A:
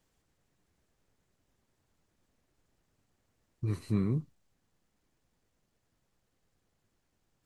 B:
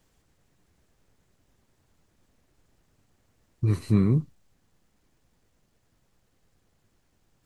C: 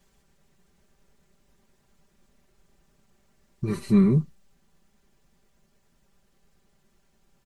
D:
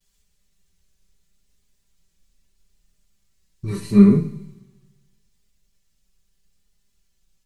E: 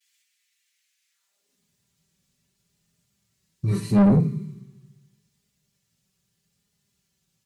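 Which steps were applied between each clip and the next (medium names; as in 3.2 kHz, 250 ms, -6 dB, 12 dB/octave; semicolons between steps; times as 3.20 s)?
bass shelf 160 Hz +3 dB; trim +7 dB
comb 5.1 ms, depth 87%
two-slope reverb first 0.52 s, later 1.9 s, from -16 dB, DRR 1 dB; vibrato 0.78 Hz 44 cents; three bands expanded up and down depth 40%; trim -1 dB
high-pass sweep 2.1 kHz -> 120 Hz, 1.09–1.72 s; saturation -13 dBFS, distortion -7 dB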